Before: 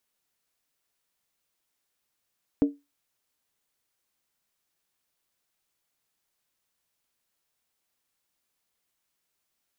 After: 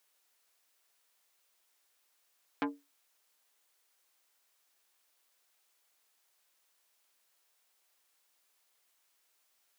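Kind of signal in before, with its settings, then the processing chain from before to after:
struck skin, lowest mode 285 Hz, decay 0.22 s, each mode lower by 10.5 dB, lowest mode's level −14 dB
high-pass filter 460 Hz 12 dB per octave
in parallel at −0.5 dB: brickwall limiter −28.5 dBFS
on the sum: saturating transformer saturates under 1,400 Hz

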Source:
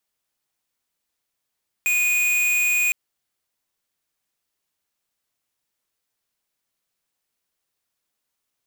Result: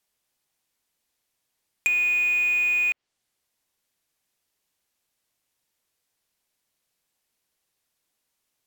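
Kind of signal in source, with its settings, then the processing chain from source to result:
tone square 2,470 Hz −20 dBFS 1.06 s
treble cut that deepens with the level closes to 2,200 Hz, closed at −21.5 dBFS
parametric band 1,300 Hz −3 dB 0.45 octaves
in parallel at −8 dB: floating-point word with a short mantissa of 2 bits

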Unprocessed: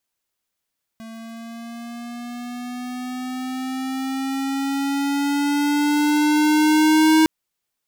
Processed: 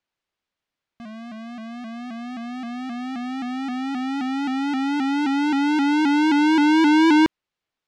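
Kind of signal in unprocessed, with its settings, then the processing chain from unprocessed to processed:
pitch glide with a swell square, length 6.26 s, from 224 Hz, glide +6 semitones, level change +23.5 dB, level −13.5 dB
low-pass filter 3,800 Hz 12 dB per octave
pitch modulation by a square or saw wave saw up 3.8 Hz, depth 100 cents

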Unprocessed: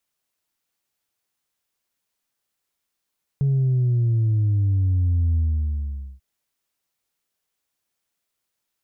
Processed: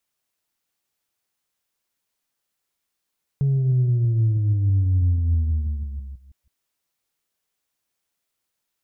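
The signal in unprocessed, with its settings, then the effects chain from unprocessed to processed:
bass drop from 140 Hz, over 2.79 s, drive 1 dB, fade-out 0.84 s, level −17 dB
delay that plays each chunk backwards 162 ms, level −13.5 dB

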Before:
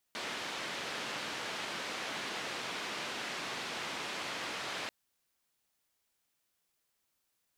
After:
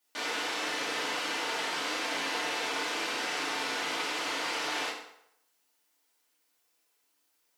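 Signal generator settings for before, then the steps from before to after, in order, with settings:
band-limited noise 180–3,300 Hz, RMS −39.5 dBFS 4.74 s
high-pass filter 230 Hz 12 dB per octave
mains-hum notches 50/100/150/200/250/300 Hz
feedback delay network reverb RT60 0.75 s, low-frequency decay 0.75×, high-frequency decay 0.8×, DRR −5.5 dB

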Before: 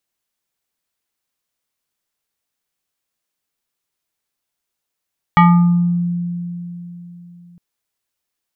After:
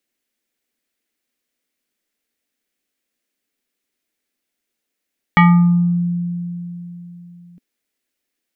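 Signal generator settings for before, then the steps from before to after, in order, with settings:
two-operator FM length 2.21 s, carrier 174 Hz, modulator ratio 5.97, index 1.5, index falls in 0.77 s exponential, decay 3.63 s, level −5 dB
octave-band graphic EQ 125/250/500/1,000/2,000 Hz −11/+12/+4/−7/+6 dB

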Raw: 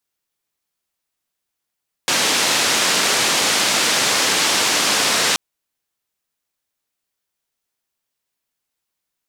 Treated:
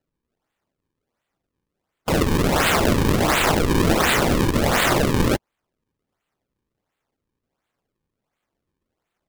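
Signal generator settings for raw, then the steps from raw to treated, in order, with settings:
band-limited noise 190–6,400 Hz, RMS −17.5 dBFS 3.28 s
frequency inversion band by band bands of 1,000 Hz
high-pass filter 1,100 Hz 24 dB per octave
sample-and-hold swept by an LFO 37×, swing 160% 1.4 Hz

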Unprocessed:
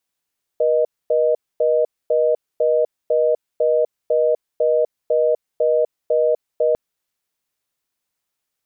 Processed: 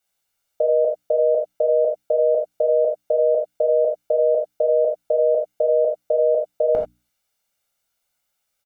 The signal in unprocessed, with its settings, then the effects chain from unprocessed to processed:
call progress tone reorder tone, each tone −16.5 dBFS 6.15 s
mains-hum notches 60/120/180/240/300 Hz
comb filter 1.4 ms, depth 54%
reverb whose tail is shaped and stops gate 110 ms flat, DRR 0 dB

